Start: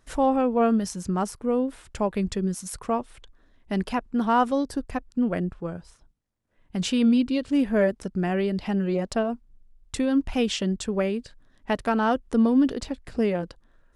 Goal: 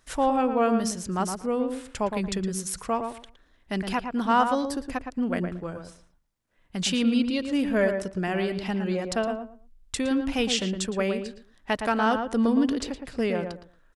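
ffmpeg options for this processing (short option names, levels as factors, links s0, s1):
-filter_complex "[0:a]tiltshelf=f=970:g=-4,asplit=2[s0][s1];[s1]adelay=114,lowpass=f=1600:p=1,volume=0.531,asplit=2[s2][s3];[s3]adelay=114,lowpass=f=1600:p=1,volume=0.22,asplit=2[s4][s5];[s5]adelay=114,lowpass=f=1600:p=1,volume=0.22[s6];[s2][s4][s6]amix=inputs=3:normalize=0[s7];[s0][s7]amix=inputs=2:normalize=0"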